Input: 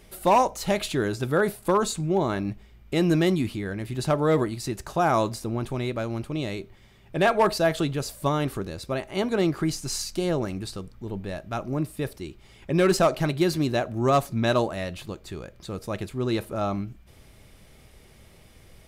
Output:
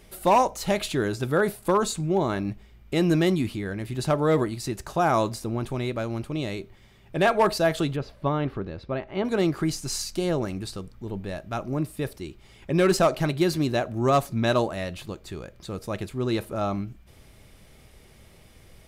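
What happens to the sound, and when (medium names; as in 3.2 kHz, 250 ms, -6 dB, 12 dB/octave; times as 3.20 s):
7.96–9.25 s: distance through air 310 m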